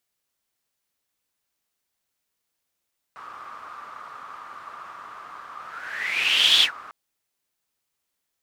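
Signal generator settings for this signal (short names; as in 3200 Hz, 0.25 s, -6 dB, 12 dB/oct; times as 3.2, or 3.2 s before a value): whoosh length 3.75 s, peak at 3.46, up 1.12 s, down 0.11 s, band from 1200 Hz, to 3400 Hz, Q 8, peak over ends 23.5 dB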